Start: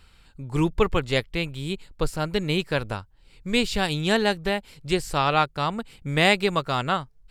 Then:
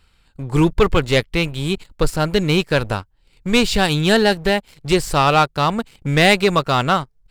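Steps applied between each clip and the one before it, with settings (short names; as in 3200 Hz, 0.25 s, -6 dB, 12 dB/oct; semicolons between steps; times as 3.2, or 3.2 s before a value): sample leveller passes 2; gain +1 dB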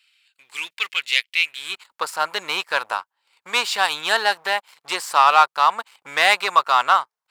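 high-pass sweep 2500 Hz -> 990 Hz, 1.38–1.89; gain -2.5 dB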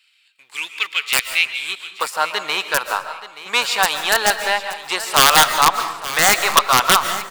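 wrapped overs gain 5.5 dB; feedback echo 0.877 s, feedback 29%, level -15 dB; on a send at -9 dB: reverb RT60 0.75 s, pre-delay 0.1 s; on the sum: gain +2.5 dB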